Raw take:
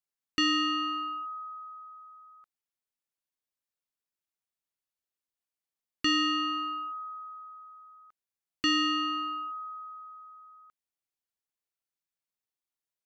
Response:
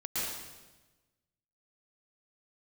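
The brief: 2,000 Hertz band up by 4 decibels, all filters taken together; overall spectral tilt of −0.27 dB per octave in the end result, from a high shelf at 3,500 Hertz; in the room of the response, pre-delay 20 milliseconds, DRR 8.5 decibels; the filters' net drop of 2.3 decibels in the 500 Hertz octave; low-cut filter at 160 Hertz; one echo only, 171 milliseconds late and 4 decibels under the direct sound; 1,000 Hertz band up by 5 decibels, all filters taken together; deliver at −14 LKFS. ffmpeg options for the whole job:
-filter_complex "[0:a]highpass=160,equalizer=frequency=500:width_type=o:gain=-7,equalizer=frequency=1000:width_type=o:gain=6,equalizer=frequency=2000:width_type=o:gain=5.5,highshelf=frequency=3500:gain=-3.5,aecho=1:1:171:0.631,asplit=2[link_01][link_02];[1:a]atrim=start_sample=2205,adelay=20[link_03];[link_02][link_03]afir=irnorm=-1:irlink=0,volume=-14dB[link_04];[link_01][link_04]amix=inputs=2:normalize=0,volume=13dB"

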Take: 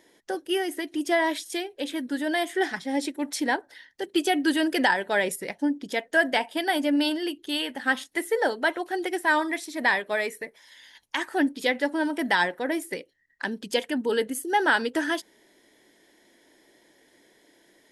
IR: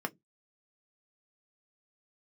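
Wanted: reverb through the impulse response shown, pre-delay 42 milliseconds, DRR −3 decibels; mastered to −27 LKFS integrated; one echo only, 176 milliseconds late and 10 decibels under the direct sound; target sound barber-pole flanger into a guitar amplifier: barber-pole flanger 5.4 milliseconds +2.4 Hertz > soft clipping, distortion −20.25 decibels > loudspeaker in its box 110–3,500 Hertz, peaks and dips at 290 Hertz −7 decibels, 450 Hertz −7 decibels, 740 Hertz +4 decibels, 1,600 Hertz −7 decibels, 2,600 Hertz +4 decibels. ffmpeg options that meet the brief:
-filter_complex "[0:a]aecho=1:1:176:0.316,asplit=2[link_01][link_02];[1:a]atrim=start_sample=2205,adelay=42[link_03];[link_02][link_03]afir=irnorm=-1:irlink=0,volume=-1dB[link_04];[link_01][link_04]amix=inputs=2:normalize=0,asplit=2[link_05][link_06];[link_06]adelay=5.4,afreqshift=2.4[link_07];[link_05][link_07]amix=inputs=2:normalize=1,asoftclip=threshold=-11.5dB,highpass=110,equalizer=frequency=290:width_type=q:width=4:gain=-7,equalizer=frequency=450:width_type=q:width=4:gain=-7,equalizer=frequency=740:width_type=q:width=4:gain=4,equalizer=frequency=1600:width_type=q:width=4:gain=-7,equalizer=frequency=2600:width_type=q:width=4:gain=4,lowpass=frequency=3500:width=0.5412,lowpass=frequency=3500:width=1.3066,volume=-0.5dB"

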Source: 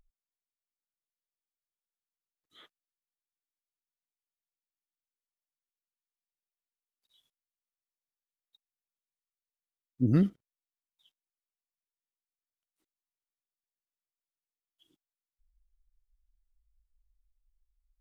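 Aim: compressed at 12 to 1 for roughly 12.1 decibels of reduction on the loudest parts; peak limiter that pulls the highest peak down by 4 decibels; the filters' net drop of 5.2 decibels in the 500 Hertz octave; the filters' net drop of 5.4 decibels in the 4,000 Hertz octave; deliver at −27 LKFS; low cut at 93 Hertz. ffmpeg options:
ffmpeg -i in.wav -af "highpass=93,equalizer=frequency=500:width_type=o:gain=-8.5,equalizer=frequency=4000:width_type=o:gain=-7,acompressor=threshold=-33dB:ratio=12,volume=14dB,alimiter=limit=-15.5dB:level=0:latency=1" out.wav

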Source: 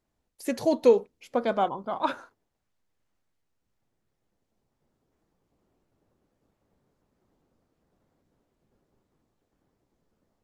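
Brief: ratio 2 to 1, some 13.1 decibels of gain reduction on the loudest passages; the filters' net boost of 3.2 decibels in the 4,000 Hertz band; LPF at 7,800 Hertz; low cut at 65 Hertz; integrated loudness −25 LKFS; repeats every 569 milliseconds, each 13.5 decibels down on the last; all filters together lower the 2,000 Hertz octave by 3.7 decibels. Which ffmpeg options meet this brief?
ffmpeg -i in.wav -af "highpass=65,lowpass=7800,equalizer=frequency=2000:width_type=o:gain=-7,equalizer=frequency=4000:width_type=o:gain=6,acompressor=threshold=-38dB:ratio=2,aecho=1:1:569|1138:0.211|0.0444,volume=13dB" out.wav

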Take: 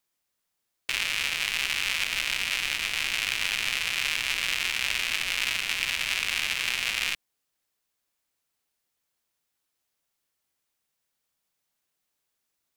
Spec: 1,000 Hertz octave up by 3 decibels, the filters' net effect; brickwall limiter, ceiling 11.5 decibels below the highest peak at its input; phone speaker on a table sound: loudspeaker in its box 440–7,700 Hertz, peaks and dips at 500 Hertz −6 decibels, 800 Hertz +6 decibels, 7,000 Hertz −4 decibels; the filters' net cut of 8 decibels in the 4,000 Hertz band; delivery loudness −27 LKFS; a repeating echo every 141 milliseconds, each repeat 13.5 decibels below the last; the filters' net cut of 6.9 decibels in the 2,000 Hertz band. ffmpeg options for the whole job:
ffmpeg -i in.wav -af "equalizer=frequency=1000:width_type=o:gain=4.5,equalizer=frequency=2000:width_type=o:gain=-6.5,equalizer=frequency=4000:width_type=o:gain=-8.5,alimiter=limit=-23dB:level=0:latency=1,highpass=frequency=440:width=0.5412,highpass=frequency=440:width=1.3066,equalizer=frequency=500:width_type=q:width=4:gain=-6,equalizer=frequency=800:width_type=q:width=4:gain=6,equalizer=frequency=7000:width_type=q:width=4:gain=-4,lowpass=frequency=7700:width=0.5412,lowpass=frequency=7700:width=1.3066,aecho=1:1:141|282:0.211|0.0444,volume=13.5dB" out.wav

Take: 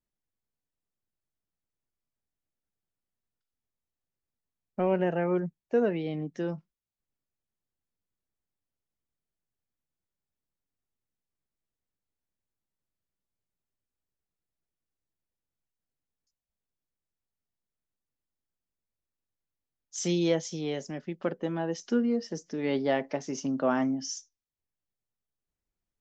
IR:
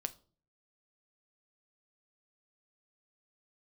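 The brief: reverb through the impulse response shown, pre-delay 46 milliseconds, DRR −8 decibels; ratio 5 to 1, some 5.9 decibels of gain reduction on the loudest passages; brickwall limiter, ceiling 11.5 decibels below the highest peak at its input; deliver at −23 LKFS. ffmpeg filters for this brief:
-filter_complex "[0:a]acompressor=threshold=-27dB:ratio=5,alimiter=level_in=6dB:limit=-24dB:level=0:latency=1,volume=-6dB,asplit=2[link_01][link_02];[1:a]atrim=start_sample=2205,adelay=46[link_03];[link_02][link_03]afir=irnorm=-1:irlink=0,volume=9dB[link_04];[link_01][link_04]amix=inputs=2:normalize=0,volume=7dB"

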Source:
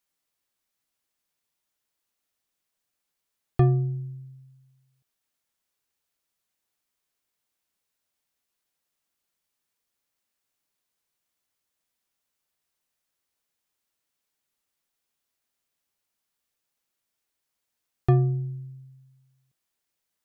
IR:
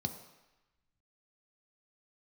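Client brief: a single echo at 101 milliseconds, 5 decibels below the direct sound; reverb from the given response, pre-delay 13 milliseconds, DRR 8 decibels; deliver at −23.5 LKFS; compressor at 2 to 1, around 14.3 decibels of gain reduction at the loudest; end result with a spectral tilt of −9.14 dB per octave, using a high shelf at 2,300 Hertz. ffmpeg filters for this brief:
-filter_complex "[0:a]highshelf=frequency=2300:gain=-4.5,acompressor=threshold=-42dB:ratio=2,aecho=1:1:101:0.562,asplit=2[link_01][link_02];[1:a]atrim=start_sample=2205,adelay=13[link_03];[link_02][link_03]afir=irnorm=-1:irlink=0,volume=-9dB[link_04];[link_01][link_04]amix=inputs=2:normalize=0,volume=12dB"

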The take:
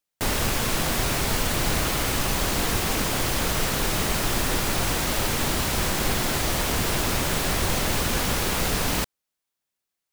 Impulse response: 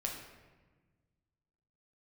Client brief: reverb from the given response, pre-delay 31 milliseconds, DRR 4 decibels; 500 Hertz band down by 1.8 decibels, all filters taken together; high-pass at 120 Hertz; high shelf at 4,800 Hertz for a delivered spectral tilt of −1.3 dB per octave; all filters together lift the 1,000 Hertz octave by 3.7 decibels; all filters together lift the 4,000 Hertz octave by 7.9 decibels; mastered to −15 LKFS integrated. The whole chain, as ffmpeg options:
-filter_complex "[0:a]highpass=120,equalizer=frequency=500:width_type=o:gain=-4,equalizer=frequency=1000:width_type=o:gain=5,equalizer=frequency=4000:width_type=o:gain=5.5,highshelf=frequency=4800:gain=8.5,asplit=2[link_01][link_02];[1:a]atrim=start_sample=2205,adelay=31[link_03];[link_02][link_03]afir=irnorm=-1:irlink=0,volume=-5.5dB[link_04];[link_01][link_04]amix=inputs=2:normalize=0,volume=1.5dB"

